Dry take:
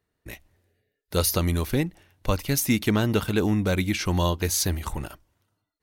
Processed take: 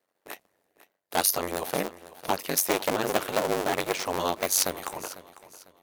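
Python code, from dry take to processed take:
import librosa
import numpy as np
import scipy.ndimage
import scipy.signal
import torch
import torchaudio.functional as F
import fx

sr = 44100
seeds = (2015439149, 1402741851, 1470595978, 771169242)

p1 = fx.cycle_switch(x, sr, every=2, mode='inverted')
p2 = scipy.signal.sosfilt(scipy.signal.butter(2, 520.0, 'highpass', fs=sr, output='sos'), p1)
p3 = fx.high_shelf(p2, sr, hz=4600.0, db=8.0)
p4 = fx.level_steps(p3, sr, step_db=20)
p5 = p3 + (p4 * 10.0 ** (-1.0 / 20.0))
p6 = fx.tilt_shelf(p5, sr, db=6.5, hz=1200.0)
p7 = p6 * np.sin(2.0 * np.pi * 47.0 * np.arange(len(p6)) / sr)
y = p7 + fx.echo_feedback(p7, sr, ms=499, feedback_pct=33, wet_db=-17.0, dry=0)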